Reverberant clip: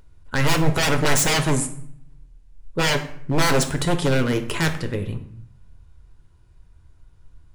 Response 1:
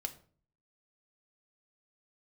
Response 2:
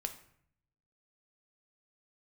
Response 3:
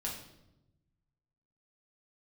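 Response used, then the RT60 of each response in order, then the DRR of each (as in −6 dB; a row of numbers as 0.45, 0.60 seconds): 2; 0.45, 0.65, 0.90 seconds; 5.5, 6.0, −3.0 decibels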